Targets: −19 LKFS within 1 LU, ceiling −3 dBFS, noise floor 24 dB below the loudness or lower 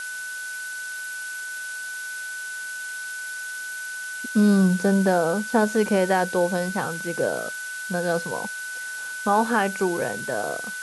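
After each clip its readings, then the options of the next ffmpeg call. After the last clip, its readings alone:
interfering tone 1,500 Hz; level of the tone −31 dBFS; background noise floor −33 dBFS; target noise floor −49 dBFS; integrated loudness −25.0 LKFS; sample peak −8.0 dBFS; target loudness −19.0 LKFS
→ -af "bandreject=frequency=1500:width=30"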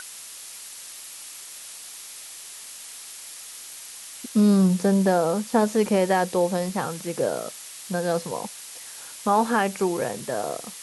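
interfering tone none found; background noise floor −41 dBFS; target noise floor −48 dBFS
→ -af "afftdn=noise_reduction=7:noise_floor=-41"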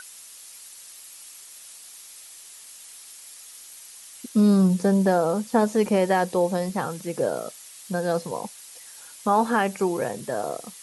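background noise floor −45 dBFS; target noise floor −48 dBFS
→ -af "afftdn=noise_reduction=6:noise_floor=-45"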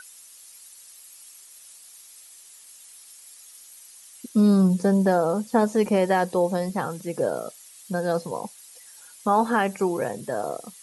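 background noise floor −49 dBFS; integrated loudness −23.5 LKFS; sample peak −9.0 dBFS; target loudness −19.0 LKFS
→ -af "volume=4.5dB"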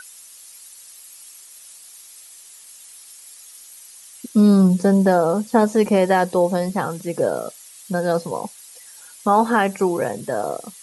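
integrated loudness −19.0 LKFS; sample peak −4.5 dBFS; background noise floor −44 dBFS

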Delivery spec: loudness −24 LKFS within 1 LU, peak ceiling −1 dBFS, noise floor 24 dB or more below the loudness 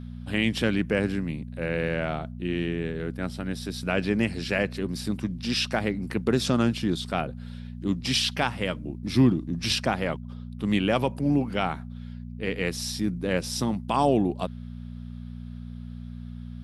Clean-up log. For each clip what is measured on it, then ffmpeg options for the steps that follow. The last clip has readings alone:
mains hum 60 Hz; hum harmonics up to 240 Hz; level of the hum −35 dBFS; integrated loudness −27.0 LKFS; sample peak −8.5 dBFS; target loudness −24.0 LKFS
→ -af "bandreject=frequency=60:width_type=h:width=4,bandreject=frequency=120:width_type=h:width=4,bandreject=frequency=180:width_type=h:width=4,bandreject=frequency=240:width_type=h:width=4"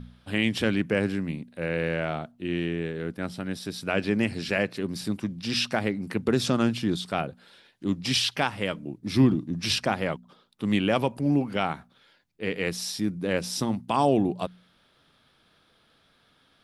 mains hum none found; integrated loudness −27.5 LKFS; sample peak −8.0 dBFS; target loudness −24.0 LKFS
→ -af "volume=3.5dB"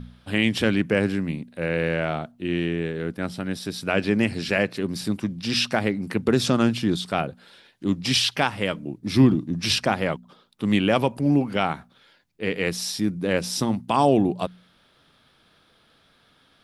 integrated loudness −24.0 LKFS; sample peak −4.5 dBFS; background noise floor −61 dBFS

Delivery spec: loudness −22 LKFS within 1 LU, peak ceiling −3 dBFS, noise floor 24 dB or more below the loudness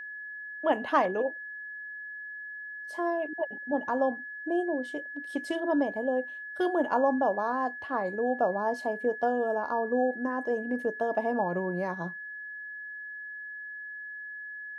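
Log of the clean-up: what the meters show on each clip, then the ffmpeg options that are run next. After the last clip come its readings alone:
interfering tone 1,700 Hz; level of the tone −38 dBFS; integrated loudness −31.0 LKFS; sample peak −11.5 dBFS; target loudness −22.0 LKFS
→ -af "bandreject=frequency=1700:width=30"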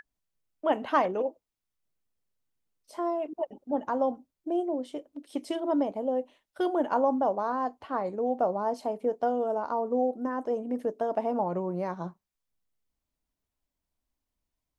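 interfering tone none found; integrated loudness −30.0 LKFS; sample peak −11.5 dBFS; target loudness −22.0 LKFS
→ -af "volume=8dB"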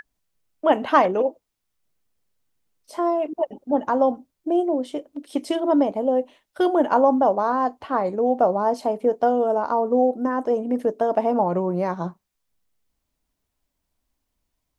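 integrated loudness −22.0 LKFS; sample peak −3.5 dBFS; background noise floor −79 dBFS

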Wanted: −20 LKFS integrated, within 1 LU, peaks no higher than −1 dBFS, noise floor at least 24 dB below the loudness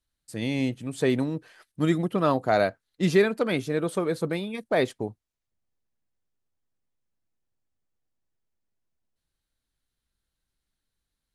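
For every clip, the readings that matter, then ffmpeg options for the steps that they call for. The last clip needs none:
integrated loudness −26.5 LKFS; sample peak −9.0 dBFS; target loudness −20.0 LKFS
→ -af "volume=6.5dB"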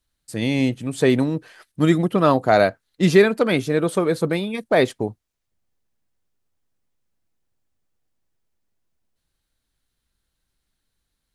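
integrated loudness −20.0 LKFS; sample peak −2.5 dBFS; background noise floor −78 dBFS

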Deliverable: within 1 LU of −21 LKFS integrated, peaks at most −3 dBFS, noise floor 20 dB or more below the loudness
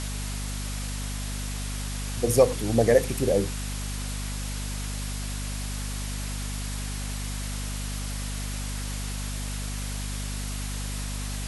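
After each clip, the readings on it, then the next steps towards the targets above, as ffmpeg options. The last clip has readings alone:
mains hum 50 Hz; hum harmonics up to 250 Hz; level of the hum −30 dBFS; background noise floor −32 dBFS; target noise floor −50 dBFS; integrated loudness −29.5 LKFS; sample peak −6.0 dBFS; target loudness −21.0 LKFS
→ -af "bandreject=frequency=50:width_type=h:width=4,bandreject=frequency=100:width_type=h:width=4,bandreject=frequency=150:width_type=h:width=4,bandreject=frequency=200:width_type=h:width=4,bandreject=frequency=250:width_type=h:width=4"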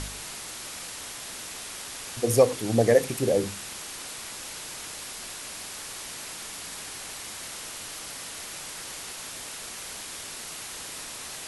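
mains hum none found; background noise floor −39 dBFS; target noise floor −51 dBFS
→ -af "afftdn=noise_reduction=12:noise_floor=-39"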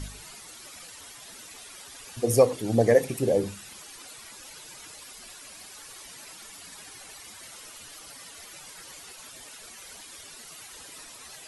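background noise floor −46 dBFS; integrated loudness −24.0 LKFS; sample peak −6.5 dBFS; target loudness −21.0 LKFS
→ -af "volume=3dB"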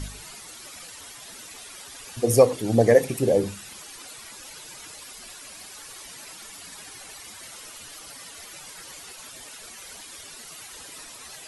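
integrated loudness −21.0 LKFS; sample peak −3.5 dBFS; background noise floor −43 dBFS

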